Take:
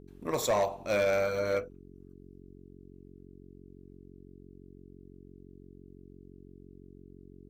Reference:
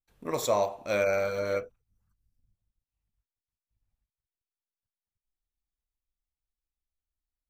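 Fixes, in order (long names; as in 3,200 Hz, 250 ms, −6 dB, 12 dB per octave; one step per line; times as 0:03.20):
clipped peaks rebuilt −21.5 dBFS
hum removal 45.9 Hz, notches 9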